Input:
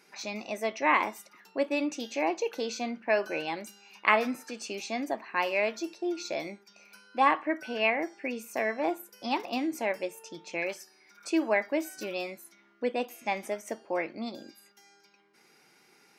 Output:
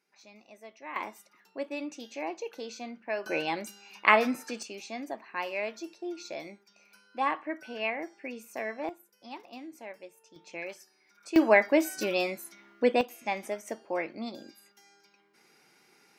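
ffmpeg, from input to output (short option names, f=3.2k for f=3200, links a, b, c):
-af "asetnsamples=n=441:p=0,asendcmd='0.96 volume volume -7dB;3.26 volume volume 2.5dB;4.63 volume volume -5.5dB;8.89 volume volume -13.5dB;10.36 volume volume -6.5dB;11.36 volume volume 6dB;13.01 volume volume -1dB',volume=-17.5dB"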